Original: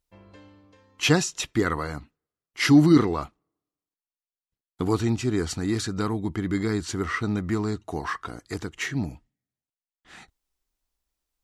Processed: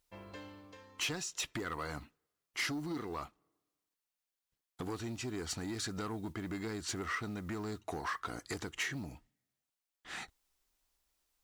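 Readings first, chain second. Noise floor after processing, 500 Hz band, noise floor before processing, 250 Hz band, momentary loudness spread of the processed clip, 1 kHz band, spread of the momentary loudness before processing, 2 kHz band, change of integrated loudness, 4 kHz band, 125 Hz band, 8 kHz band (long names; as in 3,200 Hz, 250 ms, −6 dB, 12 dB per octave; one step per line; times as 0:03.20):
below −85 dBFS, −14.5 dB, below −85 dBFS, −18.0 dB, 14 LU, −10.0 dB, 16 LU, −9.5 dB, −14.5 dB, −9.0 dB, −17.0 dB, −8.0 dB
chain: noise that follows the level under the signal 33 dB
downward compressor 8 to 1, threshold −35 dBFS, peak gain reduction 22.5 dB
soft clipping −33 dBFS, distortion −15 dB
low-shelf EQ 360 Hz −7 dB
level +4.5 dB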